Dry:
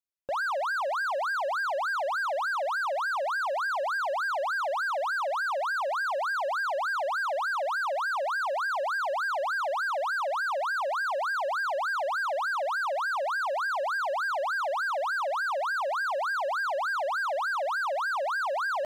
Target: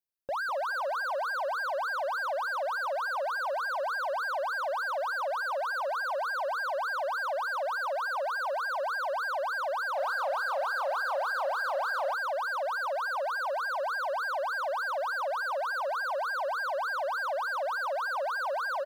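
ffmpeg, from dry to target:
ffmpeg -i in.wav -filter_complex "[0:a]highshelf=frequency=2700:gain=-7,asplit=4[link_01][link_02][link_03][link_04];[link_02]adelay=197,afreqshift=-35,volume=-15.5dB[link_05];[link_03]adelay=394,afreqshift=-70,volume=-25.4dB[link_06];[link_04]adelay=591,afreqshift=-105,volume=-35.3dB[link_07];[link_01][link_05][link_06][link_07]amix=inputs=4:normalize=0,aexciter=amount=1.6:drive=6:freq=4100,asplit=3[link_08][link_09][link_10];[link_08]afade=type=out:start_time=9.95:duration=0.02[link_11];[link_09]asplit=2[link_12][link_13];[link_13]adelay=31,volume=-6dB[link_14];[link_12][link_14]amix=inputs=2:normalize=0,afade=type=in:start_time=9.95:duration=0.02,afade=type=out:start_time=12.13:duration=0.02[link_15];[link_10]afade=type=in:start_time=12.13:duration=0.02[link_16];[link_11][link_15][link_16]amix=inputs=3:normalize=0,volume=-1.5dB" out.wav

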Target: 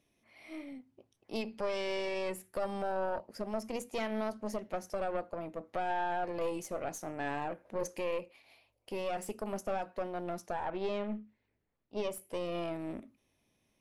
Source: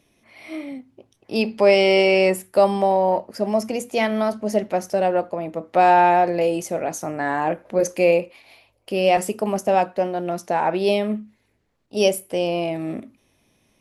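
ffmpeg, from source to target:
ffmpeg -i in.wav -filter_complex "[0:a]asettb=1/sr,asplit=3[link_01][link_02][link_03];[link_01]atrim=end=10.654[link_04];[link_02]atrim=start=10.65:end=12.11,asetpts=PTS-STARTPTS,afade=type=in:duration=0.004:curve=qsin,afade=type=out:start_time=1.456:duration=0.004:curve=qsin,lowpass=3400[link_05];[link_03]atrim=start=12.106[link_06];[link_04][link_05]acrossfade=duration=0.004:curve1=hsin:curve2=qsin[link_07];[link_07][link_06]acrossfade=duration=0.004:curve1=qsin:curve2=hsin,alimiter=limit=-13.5dB:level=0:latency=1:release=180,aeval=exprs='(tanh(7.08*val(0)+0.7)-tanh(0.7))/7.08':channel_layout=same,volume=-8.5dB" out.wav

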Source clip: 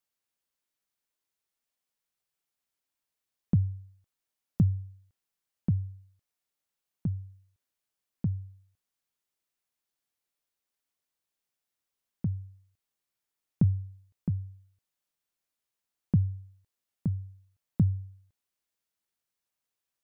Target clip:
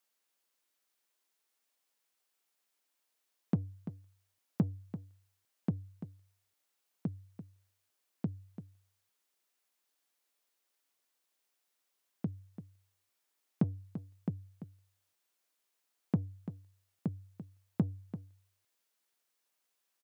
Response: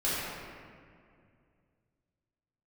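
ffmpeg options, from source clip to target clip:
-filter_complex "[0:a]asplit=2[link_01][link_02];[link_02]asoftclip=type=tanh:threshold=-26.5dB,volume=-9.5dB[link_03];[link_01][link_03]amix=inputs=2:normalize=0,highpass=280,aecho=1:1:340:0.251,volume=3dB"

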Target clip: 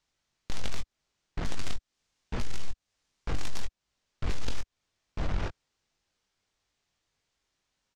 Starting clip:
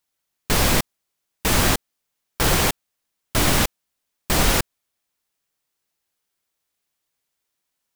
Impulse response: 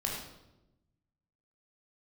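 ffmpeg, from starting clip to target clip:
-filter_complex "[0:a]asplit=3[link_01][link_02][link_03];[link_01]afade=type=out:start_time=1.59:duration=0.02[link_04];[link_02]highshelf=frequency=4600:gain=5,afade=type=in:start_time=1.59:duration=0.02,afade=type=out:start_time=3.6:duration=0.02[link_05];[link_03]afade=type=in:start_time=3.6:duration=0.02[link_06];[link_04][link_05][link_06]amix=inputs=3:normalize=0,asplit=2[link_07][link_08];[link_08]adelay=874.6,volume=-14dB,highshelf=frequency=4000:gain=-19.7[link_09];[link_07][link_09]amix=inputs=2:normalize=0,aeval=exprs='0.668*(cos(1*acos(clip(val(0)/0.668,-1,1)))-cos(1*PI/2))+0.0668*(cos(2*acos(clip(val(0)/0.668,-1,1)))-cos(2*PI/2))+0.0335*(cos(6*acos(clip(val(0)/0.668,-1,1)))-cos(6*PI/2))+0.237*(cos(8*acos(clip(val(0)/0.668,-1,1)))-cos(8*PI/2))':channel_layout=same,lowpass=frequency=6800:width=0.5412,lowpass=frequency=6800:width=1.3066,lowshelf=frequency=110:gain=12,acompressor=threshold=-16dB:ratio=3,alimiter=limit=-15dB:level=0:latency=1:release=21,asoftclip=type=tanh:threshold=-24dB,asplit=2[link_10][link_11];[link_11]adelay=21,volume=-7dB[link_12];[link_10][link_12]amix=inputs=2:normalize=0,volume=1.5dB"

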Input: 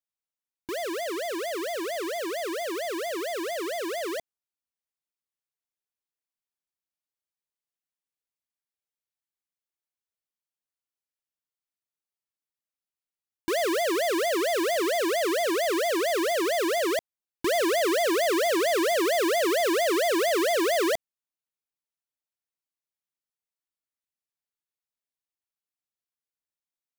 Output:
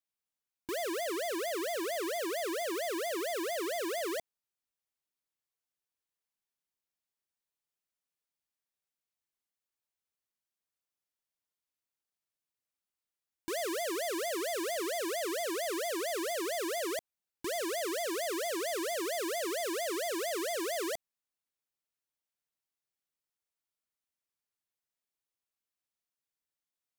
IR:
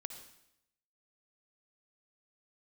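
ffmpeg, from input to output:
-filter_complex "[0:a]acrossover=split=5800[link_01][link_02];[link_01]alimiter=level_in=9.5dB:limit=-24dB:level=0:latency=1,volume=-9.5dB[link_03];[link_02]asoftclip=type=hard:threshold=-35dB[link_04];[link_03][link_04]amix=inputs=2:normalize=0"

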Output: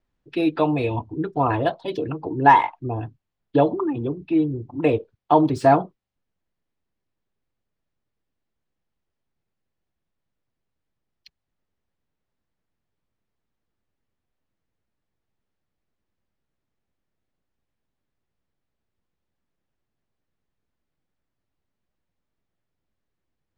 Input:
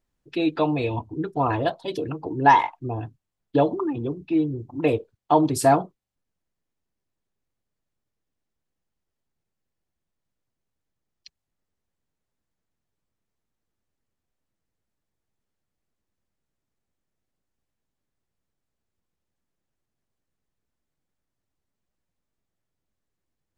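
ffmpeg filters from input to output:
ffmpeg -i in.wav -filter_complex "[0:a]lowpass=4100,acrossover=split=350|3100[link_01][link_02][link_03];[link_03]asoftclip=type=tanh:threshold=-39.5dB[link_04];[link_01][link_02][link_04]amix=inputs=3:normalize=0,volume=2dB" out.wav

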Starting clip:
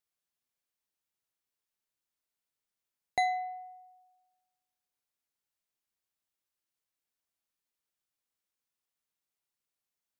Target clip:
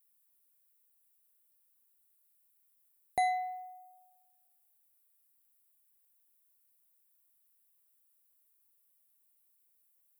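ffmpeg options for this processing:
ffmpeg -i in.wav -filter_complex "[0:a]acrossover=split=1300[link_01][link_02];[link_02]alimiter=level_in=9.5dB:limit=-24dB:level=0:latency=1,volume=-9.5dB[link_03];[link_01][link_03]amix=inputs=2:normalize=0,aexciter=amount=8.1:drive=4.2:freq=8500" out.wav

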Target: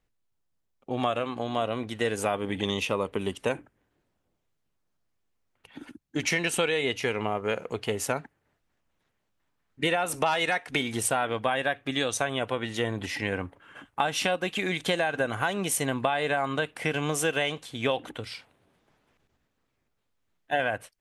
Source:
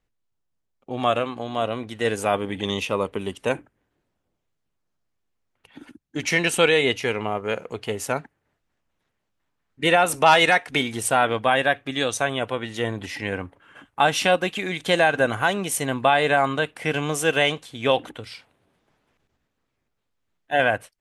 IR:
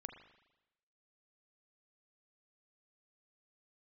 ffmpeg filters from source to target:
-af "acompressor=threshold=-23dB:ratio=5"

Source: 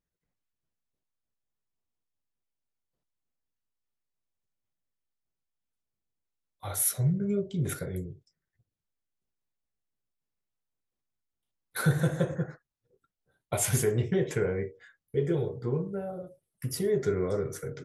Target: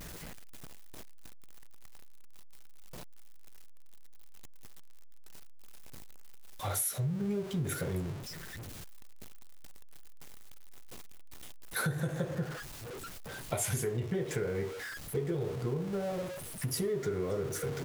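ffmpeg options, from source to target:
ffmpeg -i in.wav -af "aeval=exprs='val(0)+0.5*0.0141*sgn(val(0))':channel_layout=same,acompressor=threshold=-30dB:ratio=6" out.wav

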